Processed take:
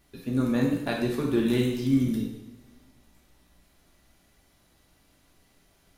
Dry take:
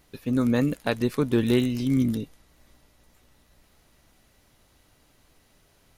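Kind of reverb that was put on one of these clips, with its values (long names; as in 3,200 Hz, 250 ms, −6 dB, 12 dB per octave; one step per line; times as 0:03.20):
coupled-rooms reverb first 0.73 s, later 2 s, DRR −2 dB
level −6 dB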